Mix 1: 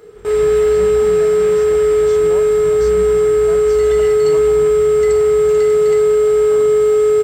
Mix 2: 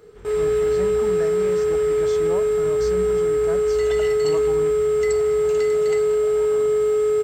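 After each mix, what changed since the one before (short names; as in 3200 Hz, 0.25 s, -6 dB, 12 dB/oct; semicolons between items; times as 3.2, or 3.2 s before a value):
first sound -7.0 dB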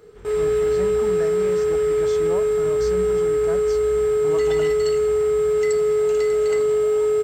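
second sound: entry +0.60 s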